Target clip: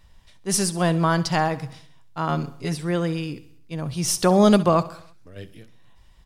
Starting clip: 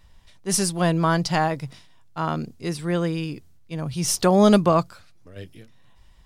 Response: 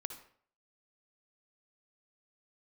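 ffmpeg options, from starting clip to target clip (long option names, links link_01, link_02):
-filter_complex "[0:a]asettb=1/sr,asplit=3[link_01][link_02][link_03];[link_01]atrim=end=2.284[link_04];[link_02]atrim=start=2.28:end=2.75,asetpts=PTS-STARTPTS,afade=type=in:duration=0.004:curve=qsin,afade=type=out:start_time=0.466:duration=0.004:curve=qsin,aecho=1:1:7.1:0.73,atrim=end_sample=20727[link_05];[link_03]atrim=start=2.746[link_06];[link_04][link_05]acrossfade=duration=0.004:curve1=hsin:curve2=qsin[link_07];[link_07][link_06]acrossfade=duration=0.004:curve1=qsin:curve2=hsin,asplit=2[link_08][link_09];[link_09]aecho=0:1:66|132|198|264|330:0.141|0.0763|0.0412|0.0222|0.012[link_10];[link_08][link_10]amix=inputs=2:normalize=0"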